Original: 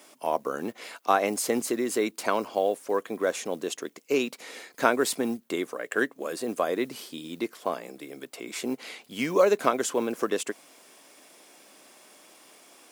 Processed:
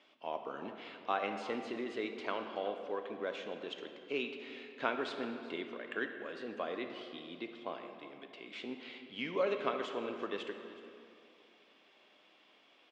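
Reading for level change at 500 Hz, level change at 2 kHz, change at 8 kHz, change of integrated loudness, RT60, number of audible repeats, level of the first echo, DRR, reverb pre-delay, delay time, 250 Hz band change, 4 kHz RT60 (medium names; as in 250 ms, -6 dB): -11.5 dB, -9.0 dB, under -30 dB, -11.5 dB, 2.6 s, 1, -18.5 dB, 5.5 dB, 10 ms, 374 ms, -12.0 dB, 1.6 s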